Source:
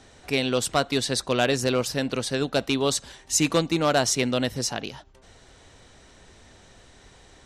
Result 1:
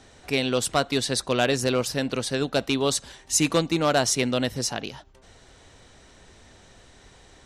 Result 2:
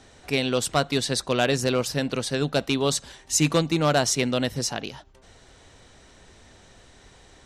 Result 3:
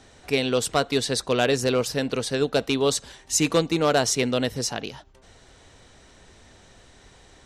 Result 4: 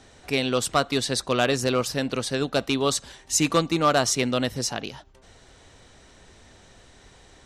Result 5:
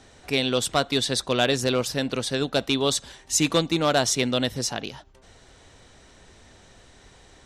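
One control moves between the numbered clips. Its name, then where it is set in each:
dynamic bell, frequency: 9.9 kHz, 150 Hz, 450 Hz, 1.2 kHz, 3.5 kHz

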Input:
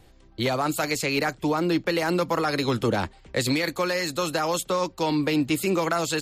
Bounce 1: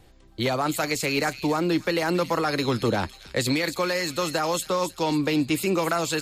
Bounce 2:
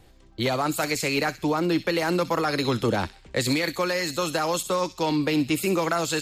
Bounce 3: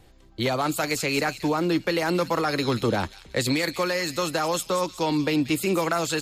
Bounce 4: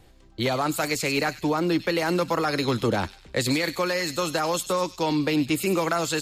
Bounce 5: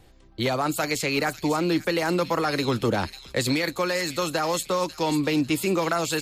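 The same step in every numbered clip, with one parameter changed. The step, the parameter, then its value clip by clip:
feedback echo behind a high-pass, time: 275 ms, 64 ms, 184 ms, 98 ms, 546 ms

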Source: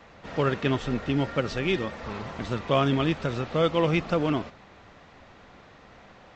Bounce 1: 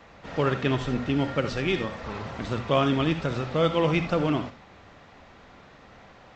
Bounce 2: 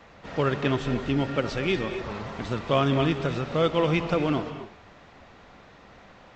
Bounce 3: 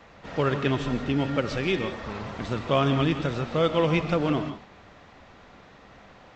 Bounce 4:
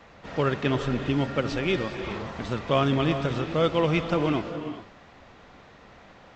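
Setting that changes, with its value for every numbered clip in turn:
gated-style reverb, gate: 100 ms, 280 ms, 190 ms, 440 ms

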